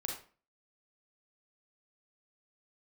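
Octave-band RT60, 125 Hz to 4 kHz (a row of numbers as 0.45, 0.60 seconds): 0.45, 0.45, 0.40, 0.40, 0.35, 0.30 seconds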